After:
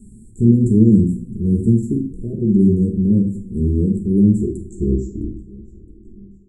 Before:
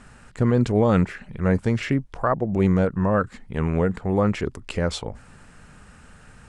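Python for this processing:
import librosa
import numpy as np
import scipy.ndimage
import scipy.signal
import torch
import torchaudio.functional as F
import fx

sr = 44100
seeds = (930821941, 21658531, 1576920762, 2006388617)

y = fx.tape_stop_end(x, sr, length_s=2.05)
y = scipy.signal.sosfilt(scipy.signal.cheby1(5, 1.0, [390.0, 7600.0], 'bandstop', fs=sr, output='sos'), y)
y = fx.echo_feedback(y, sr, ms=663, feedback_pct=43, wet_db=-24)
y = fx.rev_fdn(y, sr, rt60_s=0.56, lf_ratio=1.1, hf_ratio=0.7, size_ms=28.0, drr_db=0.5)
y = F.gain(torch.from_numpy(y), 4.0).numpy()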